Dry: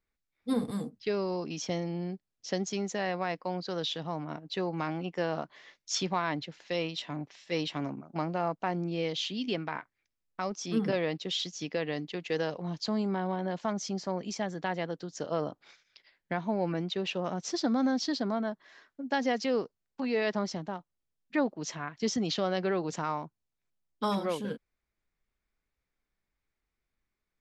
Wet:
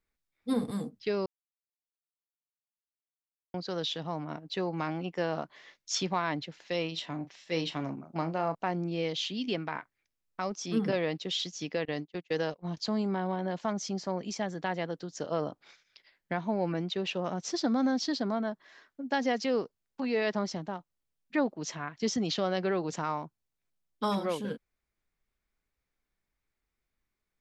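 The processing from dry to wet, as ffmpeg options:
-filter_complex "[0:a]asettb=1/sr,asplit=3[s0][s1][s2];[s0]atrim=end=6.884[s3];[s1]atrim=start=6.88:end=8.55,asetpts=PTS-STARTPTS,afade=t=in:d=0.004:c=qsin,afade=t=out:st=1.666:d=0.004:c=qsin,asplit=2[s4][s5];[s5]adelay=37,volume=0.237[s6];[s4][s6]amix=inputs=2:normalize=0,atrim=end_sample=73647[s7];[s2]atrim=start=8.546[s8];[s3][s7]acrossfade=d=0.004:c1=hsin:c2=qsin[s9];[s9][s8]acrossfade=d=0.004:c1=qsin:c2=hsin,asettb=1/sr,asplit=3[s10][s11][s12];[s10]atrim=end=11.854[s13];[s11]atrim=start=11.85:end=12.77,asetpts=PTS-STARTPTS,afade=t=in:d=0.004:c=qsin,afade=t=out:st=0.916:d=0.004:c=qsin,agate=range=0.0562:threshold=0.0141:ratio=16:release=100:detection=peak[s14];[s12]atrim=start=12.766[s15];[s13][s14]acrossfade=d=0.004:c1=hsin:c2=qsin[s16];[s16][s15]acrossfade=d=0.004:c1=qsin:c2=hsin,asplit=3[s17][s18][s19];[s17]atrim=end=1.26,asetpts=PTS-STARTPTS,afade=t=out:st=1.256:d=0.004:c=hsin[s20];[s18]atrim=start=1.26:end=3.54,asetpts=PTS-STARTPTS,volume=0[s21];[s19]atrim=start=3.54,asetpts=PTS-STARTPTS,afade=t=in:d=0.004:c=hsin[s22];[s20][s21][s22]concat=n=3:v=0:a=1"

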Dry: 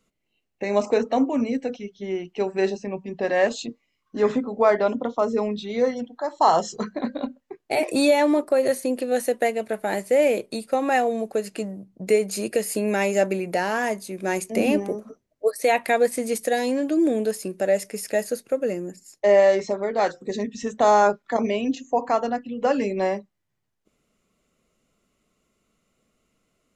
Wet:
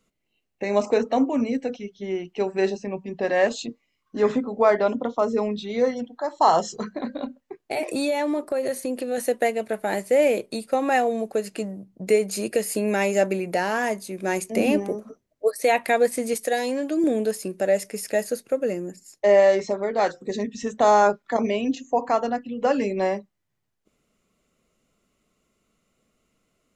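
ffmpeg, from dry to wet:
-filter_complex "[0:a]asettb=1/sr,asplit=3[s0][s1][s2];[s0]atrim=end=6.634[s3];[s1]atrim=start=6.63:end=9.18,asetpts=PTS-STARTPTS,afade=t=in:d=0.004:c=qsin,afade=t=out:st=2.546:d=0.004:c=qsin,acompressor=threshold=0.0562:ratio=2:attack=3.2:release=140:knee=1:detection=peak[s4];[s2]atrim=start=9.176[s5];[s3][s4]acrossfade=d=0.004:c1=hsin:c2=qsin[s6];[s6][s5]acrossfade=d=0.004:c1=qsin:c2=hsin,asettb=1/sr,asplit=3[s7][s8][s9];[s7]atrim=end=16.344[s10];[s8]atrim=start=16.34:end=17.04,asetpts=PTS-STARTPTS,afade=t=in:d=0.004:c=qsin,afade=t=out:st=0.696:d=0.004:c=qsin,equalizer=f=100:t=o:w=1.8:g=-13.5[s11];[s9]atrim=start=17.036[s12];[s10][s11]acrossfade=d=0.004:c1=hsin:c2=qsin[s13];[s13][s12]acrossfade=d=0.004:c1=qsin:c2=hsin"

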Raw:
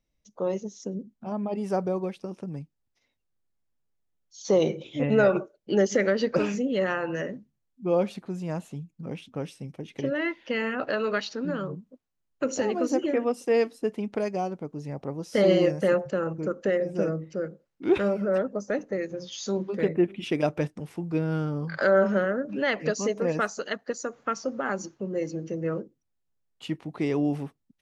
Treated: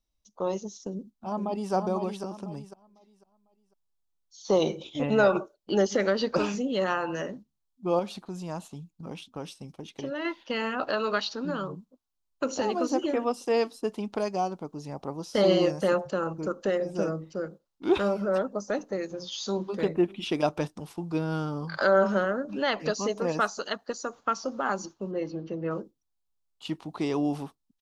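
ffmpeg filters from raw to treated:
-filter_complex "[0:a]asplit=2[s0][s1];[s1]afade=t=in:st=0.87:d=0.01,afade=t=out:st=1.73:d=0.01,aecho=0:1:500|1000|1500|2000:0.562341|0.196819|0.0688868|0.0241104[s2];[s0][s2]amix=inputs=2:normalize=0,asettb=1/sr,asplit=3[s3][s4][s5];[s3]atrim=end=7.994[s6];[s4]atrim=start=7.99:end=10.25,asetpts=PTS-STARTPTS,afade=t=in:d=0.004:c=qsin,afade=t=out:st=2.256:d=0.004:c=qsin,acompressor=threshold=0.02:ratio=1.5:attack=3.2:release=140:knee=1:detection=peak[s7];[s5]atrim=start=10.246[s8];[s6][s7]acrossfade=d=0.004:c1=hsin:c2=qsin[s9];[s9][s8]acrossfade=d=0.004:c1=qsin:c2=hsin,asettb=1/sr,asplit=3[s10][s11][s12];[s10]atrim=end=25.114[s13];[s11]atrim=start=25.11:end=25.71,asetpts=PTS-STARTPTS,afade=t=in:d=0.004:c=qsin,afade=t=out:st=0.596:d=0.004:c=qsin,lowpass=f=3800:w=0.5412,lowpass=f=3800:w=1.3066[s14];[s12]atrim=start=25.706[s15];[s13][s14]acrossfade=d=0.004:c1=hsin:c2=qsin[s16];[s16][s15]acrossfade=d=0.004:c1=qsin:c2=hsin,acrossover=split=4700[s17][s18];[s18]acompressor=threshold=0.00282:ratio=4:attack=1:release=60[s19];[s17][s19]amix=inputs=2:normalize=0,agate=range=0.501:threshold=0.00708:ratio=16:detection=peak,equalizer=f=125:t=o:w=1:g=-10,equalizer=f=250:t=o:w=1:g=-4,equalizer=f=500:t=o:w=1:g=-7,equalizer=f=1000:t=o:w=1:g=4,equalizer=f=2000:t=o:w=1:g=-11,equalizer=f=4000:t=o:w=1:g=4,volume=1.78"

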